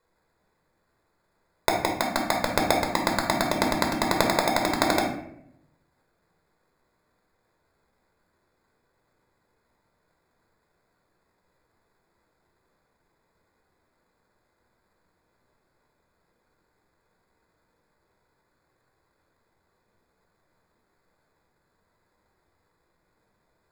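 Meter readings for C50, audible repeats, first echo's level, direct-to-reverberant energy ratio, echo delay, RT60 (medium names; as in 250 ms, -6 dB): 5.0 dB, no echo, no echo, 0.5 dB, no echo, 0.75 s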